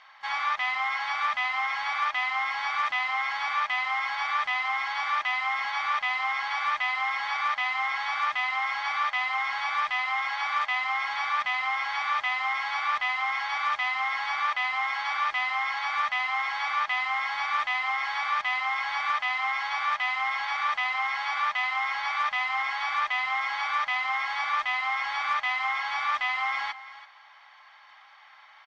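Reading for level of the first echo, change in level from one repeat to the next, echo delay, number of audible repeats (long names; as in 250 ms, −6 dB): −15.5 dB, repeats not evenly spaced, 333 ms, 1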